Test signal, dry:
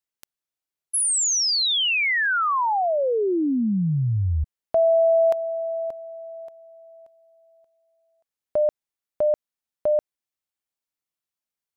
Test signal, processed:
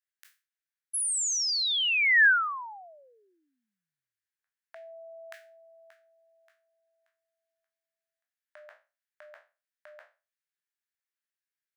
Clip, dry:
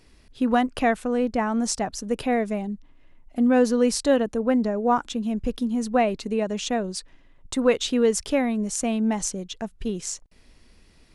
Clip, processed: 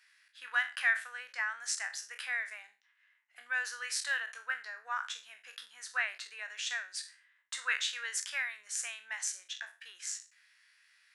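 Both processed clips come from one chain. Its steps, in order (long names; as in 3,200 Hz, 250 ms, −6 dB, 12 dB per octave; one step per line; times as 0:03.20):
peak hold with a decay on every bin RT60 0.32 s
four-pole ladder high-pass 1,500 Hz, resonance 65%
level +2.5 dB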